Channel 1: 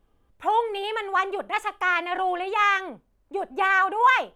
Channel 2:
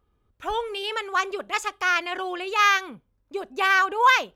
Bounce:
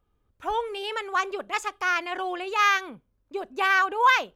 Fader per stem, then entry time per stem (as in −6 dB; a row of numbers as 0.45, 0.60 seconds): −13.0, −4.0 decibels; 0.00, 0.00 seconds